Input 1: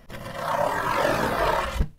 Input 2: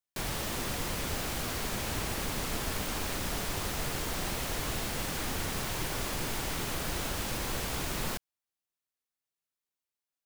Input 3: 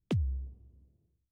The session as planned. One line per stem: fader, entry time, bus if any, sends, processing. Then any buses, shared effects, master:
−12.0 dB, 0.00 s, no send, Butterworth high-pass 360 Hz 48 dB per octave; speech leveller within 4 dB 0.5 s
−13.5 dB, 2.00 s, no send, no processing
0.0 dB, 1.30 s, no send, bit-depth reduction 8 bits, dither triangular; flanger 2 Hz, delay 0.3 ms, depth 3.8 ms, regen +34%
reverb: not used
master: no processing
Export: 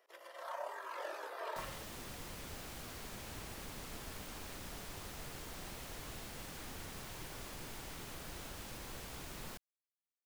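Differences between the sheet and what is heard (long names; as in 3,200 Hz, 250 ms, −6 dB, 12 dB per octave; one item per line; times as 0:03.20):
stem 1 −12.0 dB → −19.5 dB
stem 2: entry 2.00 s → 1.40 s
stem 3: muted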